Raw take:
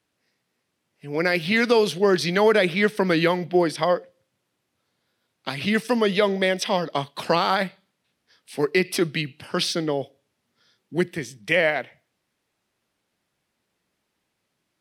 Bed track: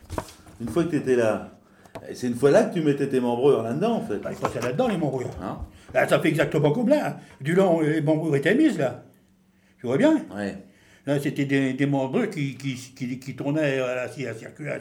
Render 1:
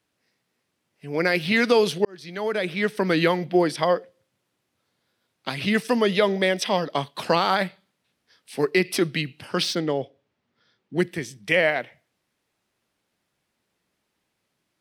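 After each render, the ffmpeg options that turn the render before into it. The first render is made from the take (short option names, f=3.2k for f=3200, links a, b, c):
-filter_complex "[0:a]asettb=1/sr,asplit=3[a][b][c];[a]atrim=end=9.624[d];[b]atrim=start=9.62:end=10.99,asetpts=PTS-STARTPTS,afade=t=in:d=0.004:c=qsin,afade=t=out:st=1.366:d=0.004:c=qsin,adynamicsmooth=sensitivity=7.5:basefreq=4.5k[e];[c]atrim=start=10.986[f];[d][e]acrossfade=d=0.004:c1=hsin:c2=qsin[g];[g][f]acrossfade=d=0.004:c1=qsin:c2=hsin,asplit=2[h][i];[h]atrim=end=2.05,asetpts=PTS-STARTPTS,afade=t=out:st=2.046:d=0.004:c=hsin[j];[i]atrim=start=2.05,asetpts=PTS-STARTPTS,afade=t=in:d=1.19[k];[j][k]concat=n=2:v=0:a=1"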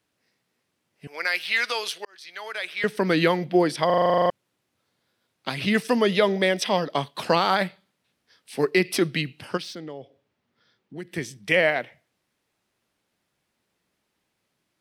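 -filter_complex "[0:a]asettb=1/sr,asplit=3[a][b][c];[a]atrim=end=1.074[d];[b]atrim=start=1.07:end=2.84,asetpts=PTS-STARTPTS,afade=t=in:d=0.004:c=qsin,afade=t=out:st=1.766:d=0.004:c=qsin,highpass=1.1k[e];[c]atrim=start=2.836[f];[d][e]acrossfade=d=0.004:c1=hsin:c2=qsin[g];[g][f]acrossfade=d=0.004:c1=qsin:c2=hsin,asplit=3[h][i][j];[h]afade=t=out:st=9.56:d=0.02[k];[i]acompressor=threshold=-43dB:ratio=2:attack=3.2:release=140:knee=1:detection=peak,afade=t=in:st=9.56:d=0.02,afade=t=out:st=11.12:d=0.02[l];[j]afade=t=in:st=11.12:d=0.02[m];[k][l][m]amix=inputs=3:normalize=0,asplit=12[n][o][p][q][r][s][t][u][v][w][x][y];[n]atrim=end=3.902[z];[o]atrim=start=3.858:end=3.902[aa];[p]atrim=start=3.858:end=3.902[ab];[q]atrim=start=3.858:end=3.902[ac];[r]atrim=start=3.858:end=3.902[ad];[s]atrim=start=3.858:end=3.902[ae];[t]atrim=start=3.858:end=3.902[af];[u]atrim=start=3.858:end=3.902[ag];[v]atrim=start=3.858:end=3.902[ah];[w]atrim=start=3.858:end=3.902[ai];[x]atrim=start=3.858:end=3.902[aj];[y]atrim=start=4.298[ak];[z][aa]acrossfade=d=0.004:c1=hsin:c2=hsin[al];[al][ab]acrossfade=d=0.004:c1=hsin:c2=hsin[am];[am][ac]acrossfade=d=0.004:c1=hsin:c2=hsin[an];[an][ad]acrossfade=d=0.004:c1=hsin:c2=hsin[ao];[ao][ae]acrossfade=d=0.004:c1=hsin:c2=hsin[ap];[ap][af]acrossfade=d=0.004:c1=hsin:c2=hsin[aq];[aq][ag]acrossfade=d=0.004:c1=hsin:c2=hsin[ar];[ar][ah]acrossfade=d=0.004:c1=hsin:c2=hsin[as];[as][ai]acrossfade=d=0.004:c1=hsin:c2=hsin[at];[at][aj]acrossfade=d=0.004:c1=hsin:c2=hsin[au];[au][ak]acrossfade=d=0.004:c1=hsin:c2=hsin"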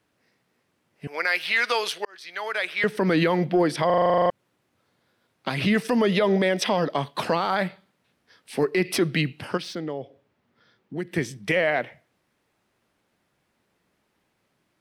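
-filter_complex "[0:a]acrossover=split=2300[a][b];[a]acontrast=51[c];[c][b]amix=inputs=2:normalize=0,alimiter=limit=-12.5dB:level=0:latency=1:release=100"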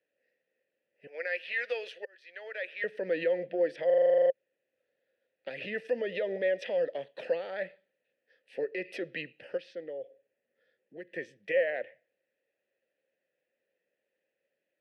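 -filter_complex "[0:a]asplit=3[a][b][c];[a]bandpass=f=530:t=q:w=8,volume=0dB[d];[b]bandpass=f=1.84k:t=q:w=8,volume=-6dB[e];[c]bandpass=f=2.48k:t=q:w=8,volume=-9dB[f];[d][e][f]amix=inputs=3:normalize=0"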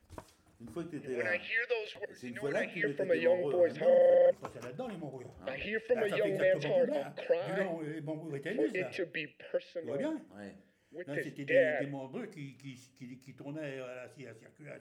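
-filter_complex "[1:a]volume=-18dB[a];[0:a][a]amix=inputs=2:normalize=0"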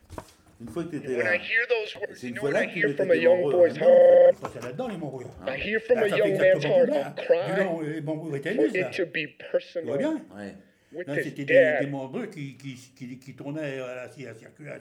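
-af "volume=9dB"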